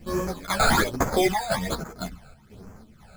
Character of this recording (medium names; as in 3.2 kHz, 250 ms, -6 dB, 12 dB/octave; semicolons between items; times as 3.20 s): aliases and images of a low sample rate 2.8 kHz, jitter 0%; phasing stages 12, 1.2 Hz, lowest notch 320–3800 Hz; chopped level 2 Hz, depth 60%, duty 65%; a shimmering, thickened sound